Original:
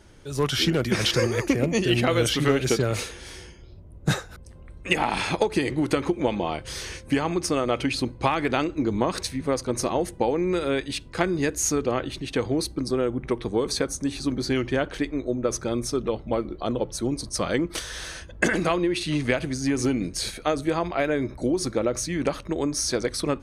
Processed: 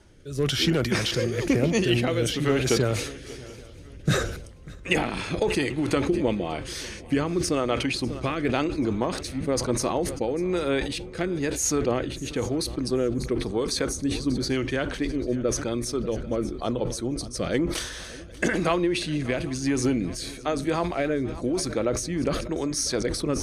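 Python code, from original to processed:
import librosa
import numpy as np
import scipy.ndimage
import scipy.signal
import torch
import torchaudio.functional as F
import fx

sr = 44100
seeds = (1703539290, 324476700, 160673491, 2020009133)

y = fx.rotary(x, sr, hz=1.0)
y = fx.echo_swing(y, sr, ms=789, ratio=3, feedback_pct=35, wet_db=-20)
y = fx.sustainer(y, sr, db_per_s=65.0)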